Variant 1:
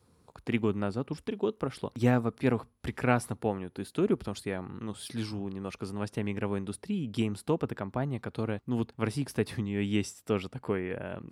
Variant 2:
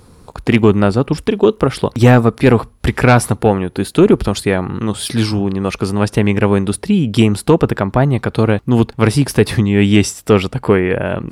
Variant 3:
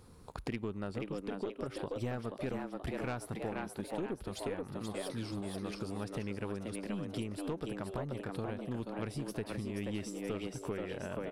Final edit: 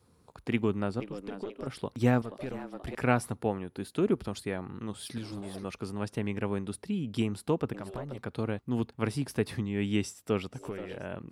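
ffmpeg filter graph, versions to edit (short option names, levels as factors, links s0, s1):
-filter_complex "[2:a]asplit=5[s0][s1][s2][s3][s4];[0:a]asplit=6[s5][s6][s7][s8][s9][s10];[s5]atrim=end=1.002[s11];[s0]atrim=start=0.998:end=1.672[s12];[s6]atrim=start=1.668:end=2.222[s13];[s1]atrim=start=2.218:end=2.952[s14];[s7]atrim=start=2.948:end=5.182[s15];[s2]atrim=start=5.178:end=5.642[s16];[s8]atrim=start=5.638:end=7.742[s17];[s3]atrim=start=7.738:end=8.182[s18];[s9]atrim=start=8.178:end=10.66[s19];[s4]atrim=start=10.5:end=11.08[s20];[s10]atrim=start=10.92[s21];[s11][s12]acrossfade=d=0.004:c1=hsin:c2=hsin[s22];[s22][s13]acrossfade=d=0.004:c1=hsin:c2=hsin[s23];[s23][s14]acrossfade=d=0.004:c1=hsin:c2=hsin[s24];[s24][s15]acrossfade=d=0.004:c1=hsin:c2=hsin[s25];[s25][s16]acrossfade=d=0.004:c1=hsin:c2=hsin[s26];[s26][s17]acrossfade=d=0.004:c1=hsin:c2=hsin[s27];[s27][s18]acrossfade=d=0.004:c1=hsin:c2=hsin[s28];[s28][s19]acrossfade=d=0.004:c1=hsin:c2=hsin[s29];[s29][s20]acrossfade=d=0.16:c1=tri:c2=tri[s30];[s30][s21]acrossfade=d=0.16:c1=tri:c2=tri"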